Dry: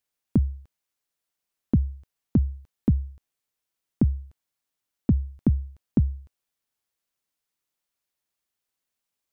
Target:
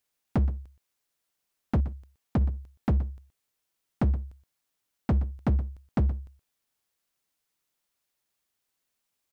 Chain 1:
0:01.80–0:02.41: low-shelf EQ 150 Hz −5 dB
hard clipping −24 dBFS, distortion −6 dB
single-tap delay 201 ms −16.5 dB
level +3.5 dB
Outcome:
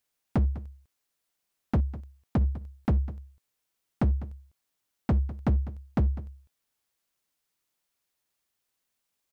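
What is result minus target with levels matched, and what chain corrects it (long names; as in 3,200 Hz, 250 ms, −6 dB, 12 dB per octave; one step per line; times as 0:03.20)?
echo 79 ms late
0:01.80–0:02.41: low-shelf EQ 150 Hz −5 dB
hard clipping −24 dBFS, distortion −6 dB
single-tap delay 122 ms −16.5 dB
level +3.5 dB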